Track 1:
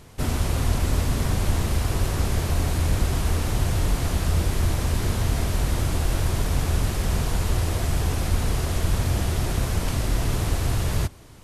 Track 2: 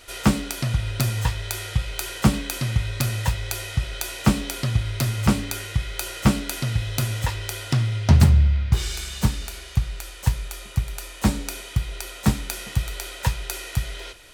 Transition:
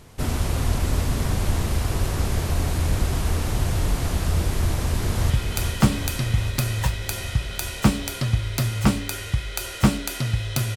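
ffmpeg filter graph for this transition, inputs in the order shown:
-filter_complex "[0:a]apad=whole_dur=10.76,atrim=end=10.76,atrim=end=5.302[a];[1:a]atrim=start=1.718:end=7.18[b];[a][b]acrossfade=d=0.004:c1=hsin:c2=hsin,asplit=2[c][d];[d]afade=t=in:st=4.75:d=0.01,afade=t=out:st=5.3:d=0.01,aecho=0:1:400|800|1200|1600|2000|2400|2800|3200|3600|4000|4400|4800:0.530884|0.424708|0.339766|0.271813|0.21745|0.17396|0.139168|0.111335|0.0890676|0.0712541|0.0570033|0.0456026[e];[c][e]amix=inputs=2:normalize=0"

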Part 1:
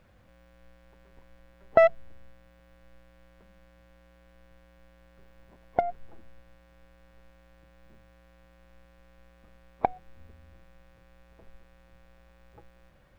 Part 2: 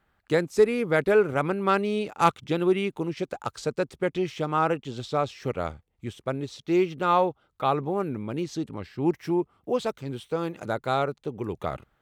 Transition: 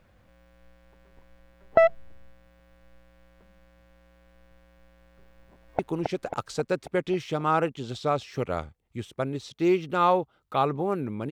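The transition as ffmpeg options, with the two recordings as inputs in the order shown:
-filter_complex "[0:a]apad=whole_dur=11.31,atrim=end=11.31,atrim=end=5.792[a];[1:a]atrim=start=2.868:end=8.39[b];[a][b]acrossfade=d=0.004:c1=hsin:c2=hsin,asplit=2[c][d];[d]afade=t=in:st=5.41:d=0.01,afade=t=out:st=5.79:d=0.01,aecho=0:1:270|540|810|1080|1350|1620|1890|2160|2430:0.707946|0.424767|0.25486|0.152916|0.0917498|0.0550499|0.0330299|0.019818|0.0118908[e];[c][e]amix=inputs=2:normalize=0"

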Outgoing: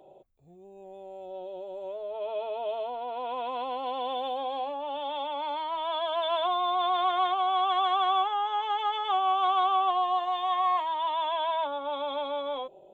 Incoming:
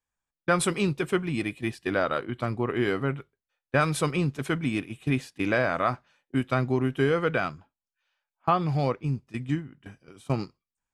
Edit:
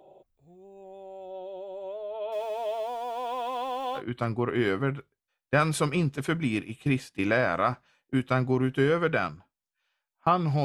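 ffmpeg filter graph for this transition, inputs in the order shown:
-filter_complex "[0:a]asettb=1/sr,asplit=3[a][b][c];[a]atrim=end=2.324[d];[b]atrim=start=2.32:end=4.02,asetpts=PTS-STARTPTS,afade=t=in:d=0.004:c=qsin,afade=t=out:st=1.696:d=0.004:c=qsin,aeval=exprs='val(0)+0.5*0.00708*sgn(val(0))':c=same[e];[c]atrim=start=4.016[f];[d][e]acrossfade=d=0.004:c1=hsin:c2=qsin[g];[g][f]acrossfade=d=0.004:c1=qsin:c2=hsin,apad=whole_dur=10.64,atrim=end=10.64,atrim=end=4.02,asetpts=PTS-STARTPTS[h];[1:a]atrim=start=2.15:end=8.85,asetpts=PTS-STARTPTS[i];[h][i]acrossfade=d=0.08:c1=tri:c2=tri"

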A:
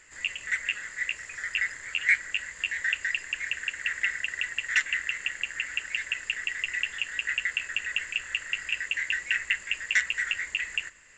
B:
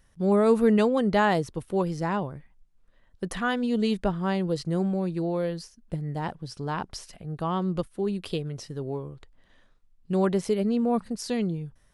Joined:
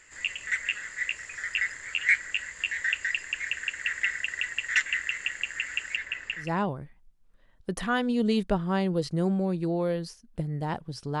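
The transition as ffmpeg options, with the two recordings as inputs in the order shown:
-filter_complex "[0:a]asettb=1/sr,asplit=3[a][b][c];[a]atrim=end=5.964[d];[b]atrim=start=5.96:end=6.54,asetpts=PTS-STARTPTS,afade=t=in:d=0.004:c=qsin,afade=t=out:st=0.576:d=0.004:c=qsin,aemphasis=mode=reproduction:type=75fm[e];[c]atrim=start=6.536[f];[d][e]acrossfade=d=0.004:c1=hsin:c2=qsin[g];[g][f]acrossfade=d=0.004:c1=qsin:c2=hsin,apad=whole_dur=11.2,atrim=end=11.2,atrim=end=6.54,asetpts=PTS-STARTPTS[h];[1:a]atrim=start=1.9:end=6.74,asetpts=PTS-STARTPTS[i];[h][i]acrossfade=d=0.18:c1=tri:c2=tri"

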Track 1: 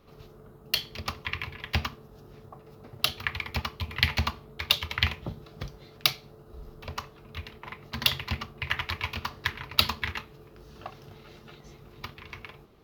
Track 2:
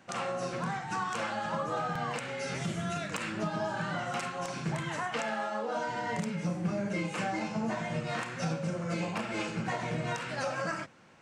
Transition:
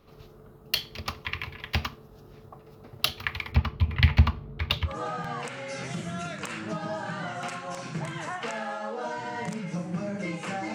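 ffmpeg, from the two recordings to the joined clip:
-filter_complex "[0:a]asettb=1/sr,asplit=3[a][b][c];[a]atrim=end=3.524[d];[b]atrim=start=3.52:end=4.95,asetpts=PTS-STARTPTS,afade=t=in:d=0.004:c=qsin,afade=t=out:st=1.426:d=0.004:c=qsin,bass=f=250:g=11,treble=f=4k:g=-13[e];[c]atrim=start=4.946[f];[d][e]acrossfade=d=0.004:c1=hsin:c2=qsin[g];[g][f]acrossfade=d=0.004:c1=qsin:c2=hsin,apad=whole_dur=10.74,atrim=end=10.74,atrim=end=4.95,asetpts=PTS-STARTPTS[h];[1:a]atrim=start=1.56:end=7.45,asetpts=PTS-STARTPTS[i];[h][i]acrossfade=d=0.1:c1=tri:c2=tri"

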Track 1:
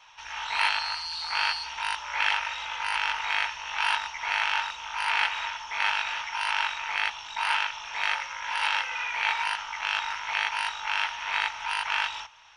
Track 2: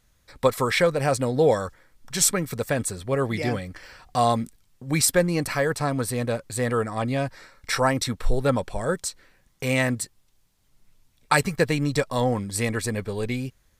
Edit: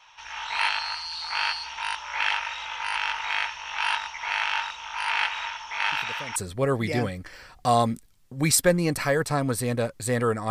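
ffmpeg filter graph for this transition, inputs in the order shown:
-filter_complex "[1:a]asplit=2[a][b];[0:a]apad=whole_dur=10.5,atrim=end=10.5,atrim=end=6.362[c];[b]atrim=start=2.858:end=7[d];[a]atrim=start=2.42:end=2.86,asetpts=PTS-STARTPTS,volume=-16.5dB,afade=t=in:d=0.004:c=hsin,afade=t=out:st=0.436:d=0.004:c=hsin,adelay=5920[e];[c][d]acrossfade=d=0.004:c1=hsin:c2=hsin[f];[f][e]amix=inputs=2:normalize=0"

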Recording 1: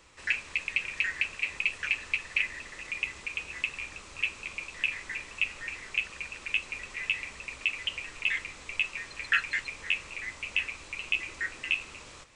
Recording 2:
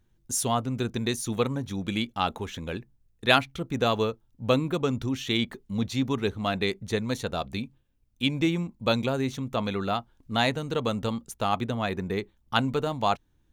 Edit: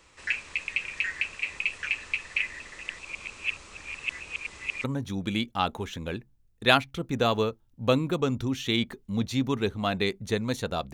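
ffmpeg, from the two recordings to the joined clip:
-filter_complex "[0:a]apad=whole_dur=10.93,atrim=end=10.93,asplit=2[a][b];[a]atrim=end=2.892[c];[b]atrim=start=2.888:end=4.842,asetpts=PTS-STARTPTS,areverse[d];[1:a]atrim=start=1.448:end=7.54[e];[c][d]acrossfade=d=0.004:c1=hsin:c2=hsin[f];[f][e]acrossfade=d=0.004:c1=hsin:c2=hsin"

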